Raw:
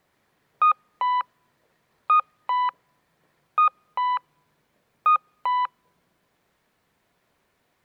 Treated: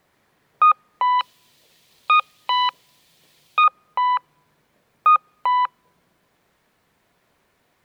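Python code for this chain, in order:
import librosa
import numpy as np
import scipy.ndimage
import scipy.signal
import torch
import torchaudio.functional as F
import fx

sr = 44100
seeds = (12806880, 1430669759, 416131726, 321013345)

y = fx.high_shelf_res(x, sr, hz=2300.0, db=12.0, q=1.5, at=(1.19, 3.64))
y = y * 10.0 ** (4.5 / 20.0)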